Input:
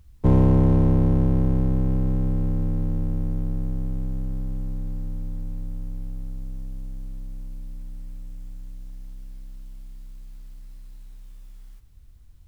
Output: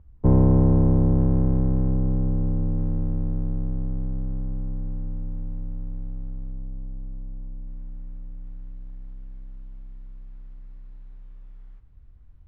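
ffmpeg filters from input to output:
ffmpeg -i in.wav -af "asetnsamples=nb_out_samples=441:pad=0,asendcmd='1.18 lowpass f 1300;1.9 lowpass f 1100;2.78 lowpass f 1400;6.52 lowpass f 1000;7.67 lowpass f 1400;8.44 lowpass f 1700',lowpass=1100" out.wav

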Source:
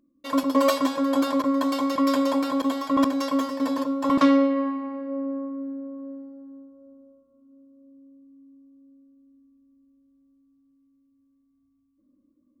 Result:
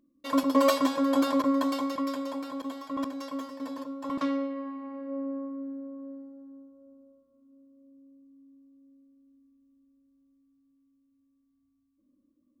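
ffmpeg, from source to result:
ffmpeg -i in.wav -af "volume=5dB,afade=type=out:start_time=1.51:duration=0.64:silence=0.334965,afade=type=in:start_time=4.64:duration=0.5:silence=0.446684" out.wav

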